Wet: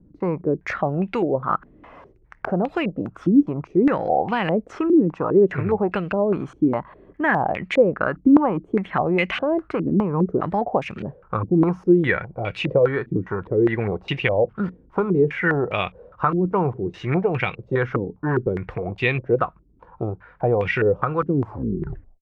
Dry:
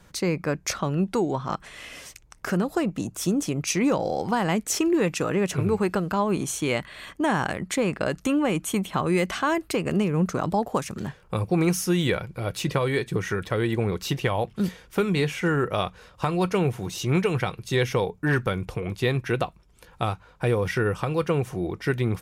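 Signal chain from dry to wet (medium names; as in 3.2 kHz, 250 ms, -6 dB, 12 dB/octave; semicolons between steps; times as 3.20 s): tape stop on the ending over 0.85 s; step-sequenced low-pass 4.9 Hz 290–2500 Hz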